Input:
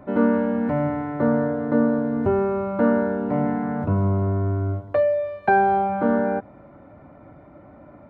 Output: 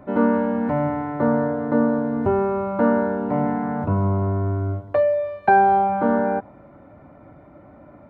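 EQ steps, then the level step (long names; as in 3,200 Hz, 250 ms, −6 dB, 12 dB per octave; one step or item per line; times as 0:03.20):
dynamic equaliser 910 Hz, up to +5 dB, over −39 dBFS, Q 2.2
0.0 dB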